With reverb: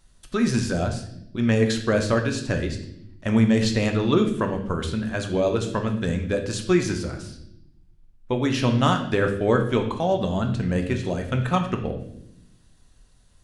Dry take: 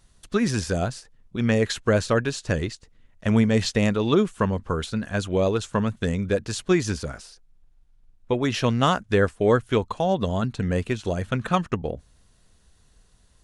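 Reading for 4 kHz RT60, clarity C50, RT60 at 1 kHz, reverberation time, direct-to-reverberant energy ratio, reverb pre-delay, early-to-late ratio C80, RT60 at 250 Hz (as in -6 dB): 0.70 s, 8.5 dB, 0.60 s, 0.75 s, 4.0 dB, 3 ms, 11.5 dB, 1.3 s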